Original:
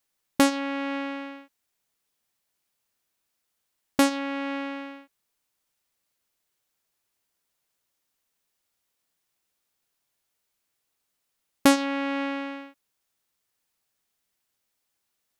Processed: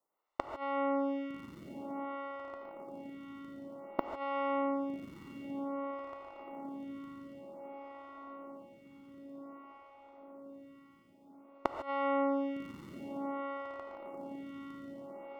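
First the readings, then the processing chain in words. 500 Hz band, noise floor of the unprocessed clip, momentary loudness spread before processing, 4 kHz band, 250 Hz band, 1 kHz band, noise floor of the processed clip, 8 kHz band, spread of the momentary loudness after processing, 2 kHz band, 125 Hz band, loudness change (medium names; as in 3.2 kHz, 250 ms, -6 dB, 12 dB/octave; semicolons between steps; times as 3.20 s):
-3.5 dB, -79 dBFS, 16 LU, -20.5 dB, -9.0 dB, -4.0 dB, -60 dBFS, under -30 dB, 20 LU, -13.0 dB, -3.5 dB, -13.0 dB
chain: tracing distortion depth 0.14 ms; tilt EQ +3.5 dB/octave; in parallel at +1 dB: compression, threshold -34 dBFS, peak gain reduction 22.5 dB; on the sum: inverted gate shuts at -3 dBFS, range -26 dB; Savitzky-Golay filter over 65 samples; echo that smears into a reverb 1231 ms, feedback 69%, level -7 dB; gated-style reverb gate 170 ms rising, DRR 6.5 dB; lamp-driven phase shifter 0.53 Hz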